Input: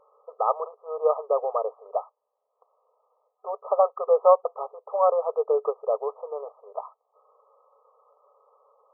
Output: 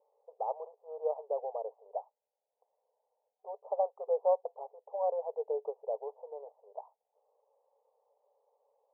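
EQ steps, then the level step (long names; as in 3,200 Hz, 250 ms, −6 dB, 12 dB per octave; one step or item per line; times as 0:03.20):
high-pass filter 420 Hz
elliptic low-pass filter 880 Hz, stop band 40 dB
−8.5 dB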